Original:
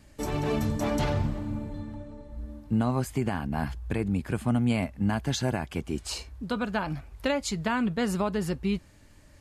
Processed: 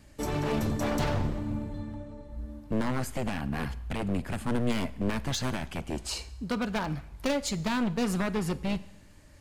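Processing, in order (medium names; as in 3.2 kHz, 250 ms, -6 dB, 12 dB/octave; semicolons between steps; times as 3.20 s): one-sided wavefolder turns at -25 dBFS; Schroeder reverb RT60 0.87 s, combs from 33 ms, DRR 17 dB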